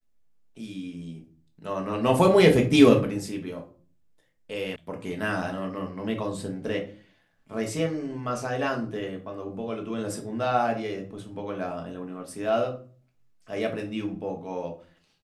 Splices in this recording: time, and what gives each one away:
4.76 s: sound stops dead

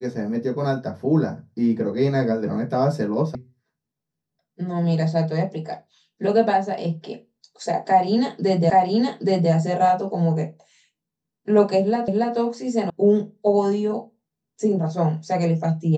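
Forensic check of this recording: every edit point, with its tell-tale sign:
3.35 s: sound stops dead
8.70 s: repeat of the last 0.82 s
12.08 s: repeat of the last 0.28 s
12.90 s: sound stops dead

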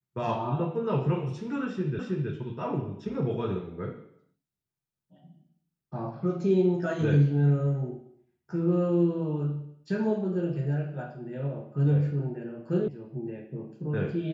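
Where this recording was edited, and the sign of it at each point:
1.99 s: repeat of the last 0.32 s
12.88 s: sound stops dead

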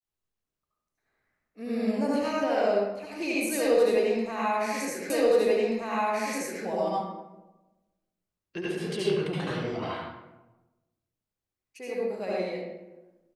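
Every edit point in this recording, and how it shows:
5.10 s: repeat of the last 1.53 s

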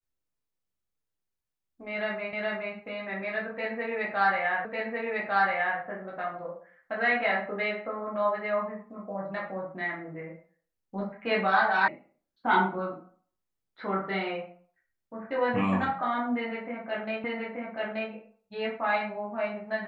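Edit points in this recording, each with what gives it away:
2.33 s: repeat of the last 0.42 s
4.65 s: repeat of the last 1.15 s
11.88 s: sound stops dead
17.24 s: repeat of the last 0.88 s

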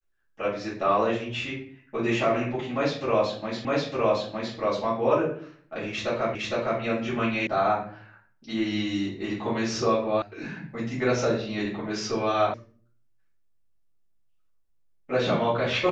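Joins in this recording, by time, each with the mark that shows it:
3.65 s: repeat of the last 0.91 s
6.35 s: repeat of the last 0.46 s
7.47 s: sound stops dead
10.22 s: sound stops dead
12.54 s: sound stops dead

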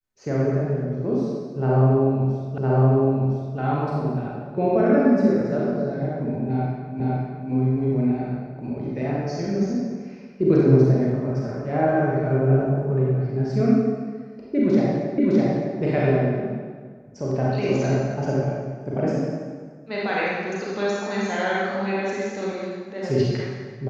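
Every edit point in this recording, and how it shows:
2.58 s: repeat of the last 1.01 s
7.00 s: repeat of the last 0.51 s
15.18 s: repeat of the last 0.61 s

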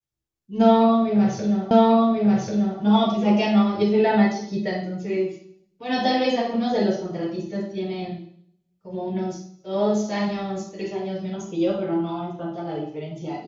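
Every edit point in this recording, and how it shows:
1.71 s: repeat of the last 1.09 s

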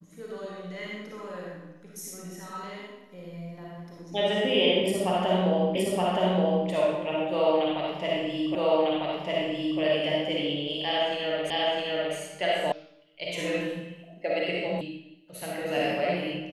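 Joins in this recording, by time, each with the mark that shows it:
5.75 s: repeat of the last 0.92 s
8.55 s: repeat of the last 1.25 s
11.50 s: repeat of the last 0.66 s
12.72 s: sound stops dead
14.81 s: sound stops dead

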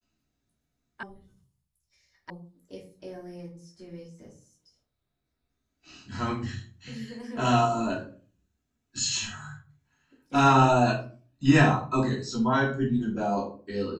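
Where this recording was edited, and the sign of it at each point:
1.03 s: sound stops dead
2.30 s: sound stops dead

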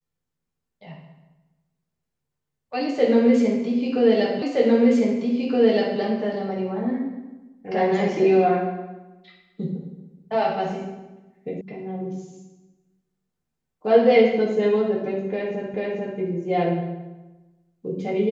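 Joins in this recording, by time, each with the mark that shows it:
4.42 s: repeat of the last 1.57 s
11.61 s: sound stops dead
15.74 s: repeat of the last 0.44 s

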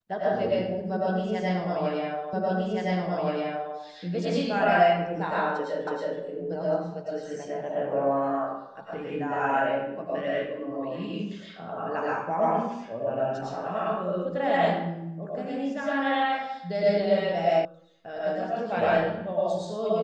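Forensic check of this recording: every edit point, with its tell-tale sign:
2.33 s: repeat of the last 1.42 s
5.87 s: repeat of the last 0.32 s
17.65 s: sound stops dead

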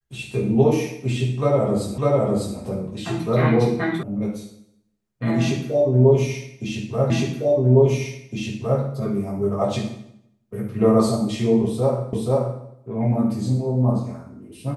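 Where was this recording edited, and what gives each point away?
1.98 s: repeat of the last 0.6 s
4.03 s: sound stops dead
7.10 s: repeat of the last 1.71 s
12.13 s: repeat of the last 0.48 s

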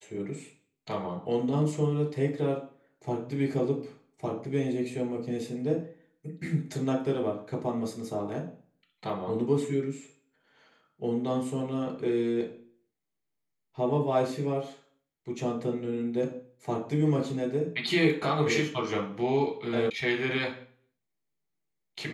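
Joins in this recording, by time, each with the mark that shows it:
19.90 s: sound stops dead

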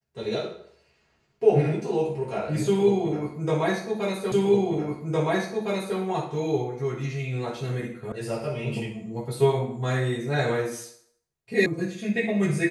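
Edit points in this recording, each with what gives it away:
4.32 s: repeat of the last 1.66 s
8.12 s: sound stops dead
11.66 s: sound stops dead

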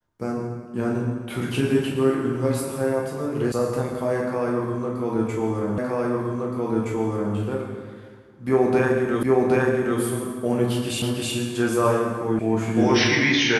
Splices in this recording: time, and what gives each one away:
3.52 s: sound stops dead
5.78 s: repeat of the last 1.57 s
9.23 s: repeat of the last 0.77 s
11.02 s: repeat of the last 0.32 s
12.39 s: sound stops dead

